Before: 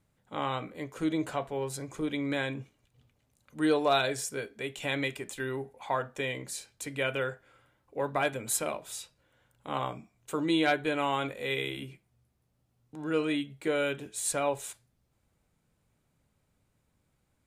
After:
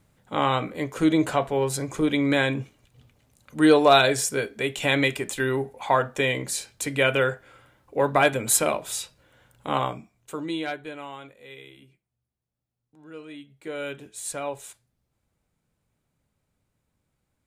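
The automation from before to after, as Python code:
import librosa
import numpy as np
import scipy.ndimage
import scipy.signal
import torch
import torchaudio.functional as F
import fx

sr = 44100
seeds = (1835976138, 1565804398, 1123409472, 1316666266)

y = fx.gain(x, sr, db=fx.line((9.67, 9.5), (10.31, -0.5), (11.37, -12.5), (13.26, -12.5), (13.89, -2.0)))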